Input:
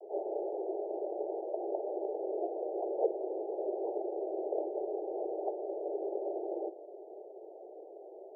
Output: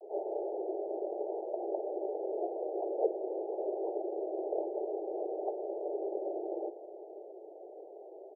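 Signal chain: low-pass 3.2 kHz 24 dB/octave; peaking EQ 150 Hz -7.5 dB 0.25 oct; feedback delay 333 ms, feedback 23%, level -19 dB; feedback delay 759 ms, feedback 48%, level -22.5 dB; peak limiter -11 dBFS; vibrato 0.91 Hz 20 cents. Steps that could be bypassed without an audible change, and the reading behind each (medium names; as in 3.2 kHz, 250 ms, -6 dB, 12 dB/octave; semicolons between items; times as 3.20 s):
low-pass 3.2 kHz: input has nothing above 910 Hz; peaking EQ 150 Hz: input has nothing below 290 Hz; peak limiter -11 dBFS: peak at its input -18.0 dBFS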